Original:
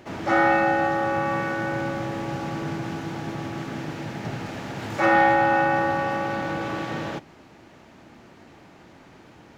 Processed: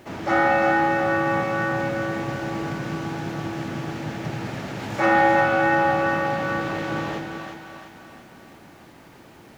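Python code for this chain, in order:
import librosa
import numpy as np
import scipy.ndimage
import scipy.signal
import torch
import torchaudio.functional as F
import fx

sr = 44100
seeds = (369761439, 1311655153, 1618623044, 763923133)

y = fx.quant_dither(x, sr, seeds[0], bits=10, dither='none')
y = fx.echo_split(y, sr, split_hz=580.0, low_ms=194, high_ms=347, feedback_pct=52, wet_db=-5.0)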